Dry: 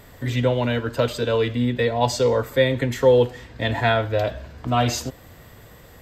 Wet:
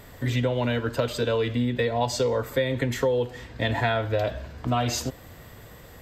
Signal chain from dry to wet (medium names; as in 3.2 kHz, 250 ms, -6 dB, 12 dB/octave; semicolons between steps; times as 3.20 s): compression 10:1, threshold -20 dBFS, peak gain reduction 10 dB